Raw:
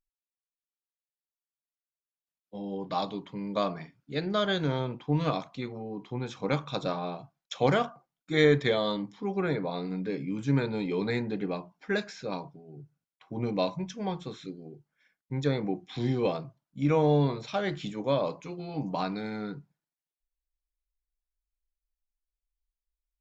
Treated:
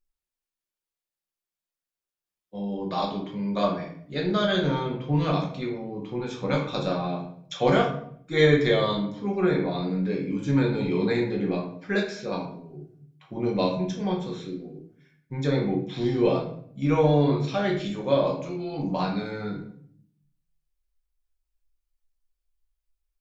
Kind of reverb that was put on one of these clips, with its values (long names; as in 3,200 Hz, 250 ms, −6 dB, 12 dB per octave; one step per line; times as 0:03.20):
rectangular room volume 87 cubic metres, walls mixed, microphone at 0.94 metres